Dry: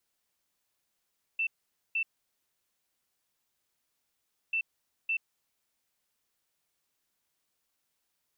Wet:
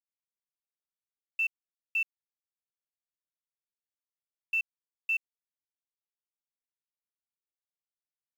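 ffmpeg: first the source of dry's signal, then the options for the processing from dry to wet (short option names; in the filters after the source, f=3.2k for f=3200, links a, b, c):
-f lavfi -i "aevalsrc='0.0473*sin(2*PI*2670*t)*clip(min(mod(mod(t,3.14),0.56),0.08-mod(mod(t,3.14),0.56))/0.005,0,1)*lt(mod(t,3.14),1.12)':d=6.28:s=44100"
-filter_complex "[0:a]asplit=2[a][b];[b]alimiter=level_in=14dB:limit=-24dB:level=0:latency=1,volume=-14dB,volume=1dB[c];[a][c]amix=inputs=2:normalize=0,acrusher=bits=7:mix=0:aa=0.5"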